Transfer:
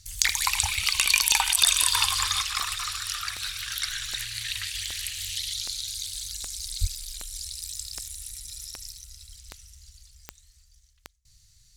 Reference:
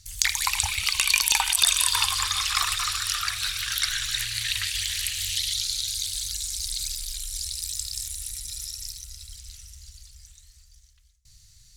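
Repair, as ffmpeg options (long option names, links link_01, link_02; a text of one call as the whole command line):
ffmpeg -i in.wav -filter_complex "[0:a]adeclick=threshold=4,asplit=3[link_01][link_02][link_03];[link_01]afade=type=out:start_time=6.8:duration=0.02[link_04];[link_02]highpass=frequency=140:width=0.5412,highpass=frequency=140:width=1.3066,afade=type=in:start_time=6.8:duration=0.02,afade=type=out:start_time=6.92:duration=0.02[link_05];[link_03]afade=type=in:start_time=6.92:duration=0.02[link_06];[link_04][link_05][link_06]amix=inputs=3:normalize=0,asetnsamples=nb_out_samples=441:pad=0,asendcmd='2.42 volume volume 4.5dB',volume=0dB" out.wav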